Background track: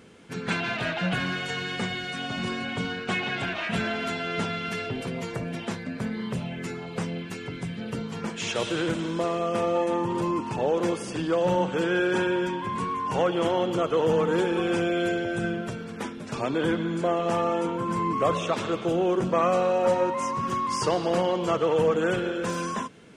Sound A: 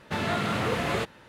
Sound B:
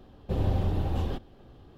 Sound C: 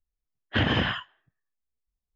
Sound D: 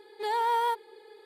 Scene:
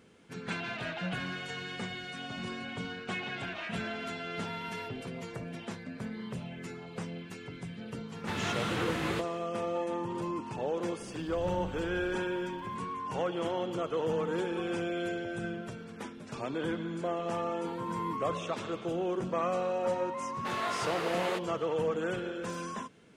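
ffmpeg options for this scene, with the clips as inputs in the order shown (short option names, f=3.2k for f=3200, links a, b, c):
-filter_complex "[4:a]asplit=2[a][b];[1:a]asplit=2[c][d];[0:a]volume=-8.5dB[e];[a]highpass=860[f];[c]equalizer=f=630:w=6.4:g=-10[g];[2:a]aeval=exprs='val(0)+0.5*0.0106*sgn(val(0))':c=same[h];[b]acrusher=bits=11:mix=0:aa=0.000001[i];[d]highpass=f=380:w=0.5412,highpass=f=380:w=1.3066[j];[f]atrim=end=1.25,asetpts=PTS-STARTPTS,volume=-17.5dB,afade=t=in:d=0.004:c=hsin,afade=t=out:st=1.246:d=0.004:c=hsin,adelay=4140[k];[g]atrim=end=1.28,asetpts=PTS-STARTPTS,volume=-5.5dB,afade=t=in:d=0.004:c=hsin,afade=t=out:st=1.276:d=0.004:c=hsin,adelay=8160[l];[h]atrim=end=1.77,asetpts=PTS-STARTPTS,volume=-16.5dB,afade=t=in:d=0.004:c=hsin,afade=t=out:st=1.766:d=0.004:c=hsin,adelay=10990[m];[i]atrim=end=1.25,asetpts=PTS-STARTPTS,volume=-17.5dB,afade=t=in:d=0.004:c=hsin,afade=t=out:st=1.246:d=0.004:c=hsin,adelay=17420[n];[j]atrim=end=1.28,asetpts=PTS-STARTPTS,volume=-6dB,afade=t=in:d=0.004:c=hsin,afade=t=out:st=1.276:d=0.004:c=hsin,adelay=20340[o];[e][k][l][m][n][o]amix=inputs=6:normalize=0"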